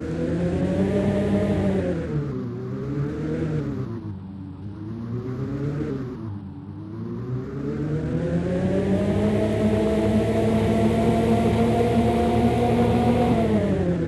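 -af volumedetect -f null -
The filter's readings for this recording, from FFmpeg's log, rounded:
mean_volume: -22.6 dB
max_volume: -7.4 dB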